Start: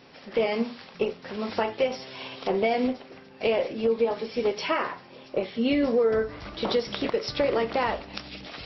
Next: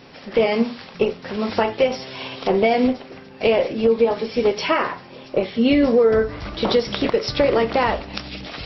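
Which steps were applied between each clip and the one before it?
low-shelf EQ 150 Hz +5.5 dB
level +6.5 dB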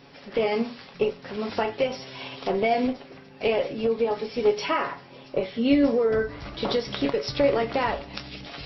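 tuned comb filter 140 Hz, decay 0.17 s, harmonics all, mix 70%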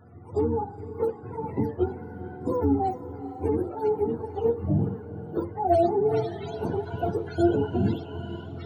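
frequency axis turned over on the octave scale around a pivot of 440 Hz
spectral peaks only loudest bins 64
feedback delay with all-pass diffusion 457 ms, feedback 54%, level −14 dB

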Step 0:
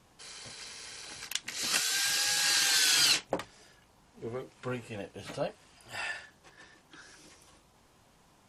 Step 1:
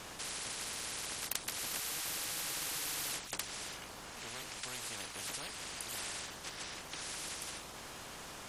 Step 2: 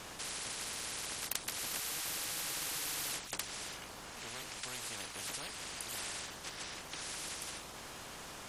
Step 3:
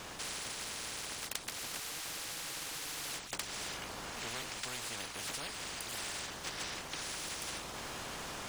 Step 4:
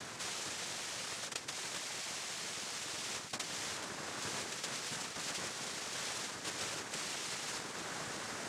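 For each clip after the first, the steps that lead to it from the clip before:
every bin compressed towards the loudest bin 10 to 1; level −5.5 dB
no processing that can be heard
running median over 3 samples; speech leveller within 4 dB 0.5 s; level +1.5 dB
cochlear-implant simulation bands 3; level +1 dB

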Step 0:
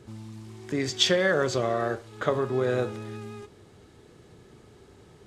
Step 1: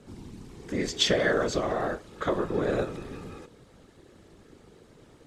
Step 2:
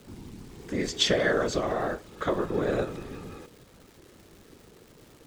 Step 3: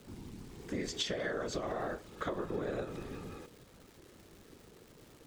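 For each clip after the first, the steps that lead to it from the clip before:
random phases in short frames; level −1.5 dB
surface crackle 600 per second −46 dBFS
downward compressor 6 to 1, threshold −29 dBFS, peak gain reduction 10 dB; level −4 dB

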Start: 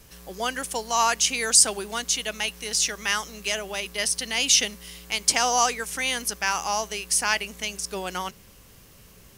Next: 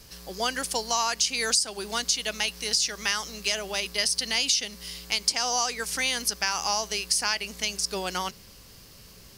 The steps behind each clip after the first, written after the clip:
parametric band 4,700 Hz +10 dB 0.54 octaves
downward compressor 8 to 1, threshold −21 dBFS, peak gain reduction 14 dB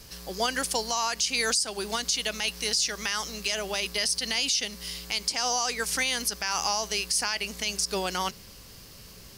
brickwall limiter −17 dBFS, peak gain reduction 8 dB
level +2 dB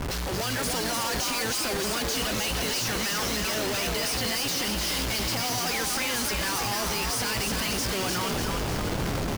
comparator with hysteresis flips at −44.5 dBFS
echo with shifted repeats 300 ms, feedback 58%, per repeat +56 Hz, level −4 dB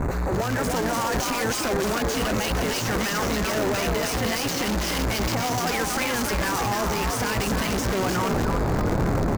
adaptive Wiener filter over 15 samples
level +6.5 dB

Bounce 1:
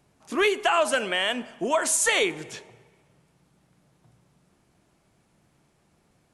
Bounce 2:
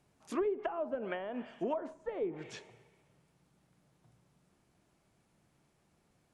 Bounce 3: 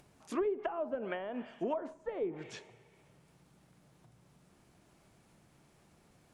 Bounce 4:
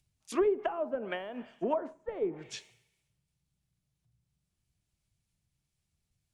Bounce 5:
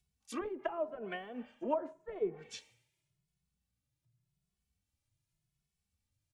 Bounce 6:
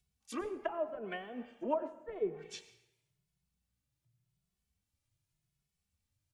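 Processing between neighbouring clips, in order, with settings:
treble cut that deepens with the level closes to 490 Hz, closed at −20 dBFS; level −7 dB
upward compression, threshold −56 dBFS
multiband upward and downward expander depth 100%
barber-pole flanger 2.3 ms +0.88 Hz; level −1.5 dB
convolution reverb RT60 0.80 s, pre-delay 87 ms, DRR 14 dB

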